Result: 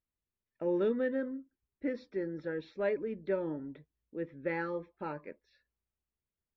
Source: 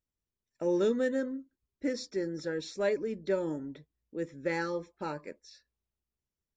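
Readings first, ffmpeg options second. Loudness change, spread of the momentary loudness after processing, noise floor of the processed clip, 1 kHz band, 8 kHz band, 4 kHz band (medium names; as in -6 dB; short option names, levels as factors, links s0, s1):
-2.5 dB, 15 LU, under -85 dBFS, -2.5 dB, under -25 dB, under -10 dB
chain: -af "lowpass=f=3000:w=0.5412,lowpass=f=3000:w=1.3066,volume=0.75"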